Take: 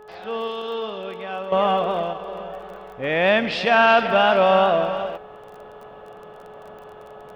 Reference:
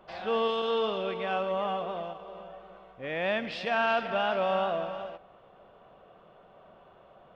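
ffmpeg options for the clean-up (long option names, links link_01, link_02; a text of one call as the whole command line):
ffmpeg -i in.wav -af "adeclick=threshold=4,bandreject=frequency=425.2:width_type=h:width=4,bandreject=frequency=850.4:width_type=h:width=4,bandreject=frequency=1275.6:width_type=h:width=4,bandreject=frequency=1700.8:width_type=h:width=4,asetnsamples=nb_out_samples=441:pad=0,asendcmd='1.52 volume volume -11.5dB',volume=0dB" out.wav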